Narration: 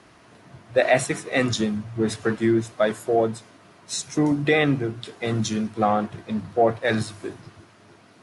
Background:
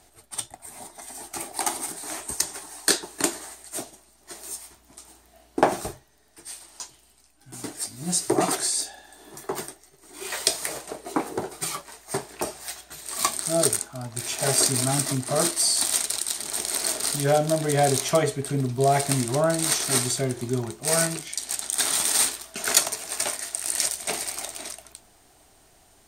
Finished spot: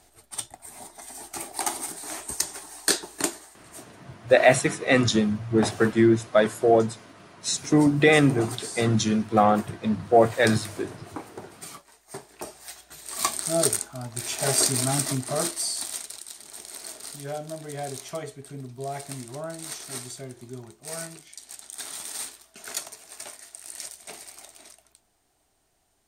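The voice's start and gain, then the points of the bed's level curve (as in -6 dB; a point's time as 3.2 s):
3.55 s, +2.0 dB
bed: 3.22 s -1.5 dB
3.53 s -11.5 dB
12.03 s -11.5 dB
13.32 s -1 dB
15.15 s -1 dB
16.22 s -13 dB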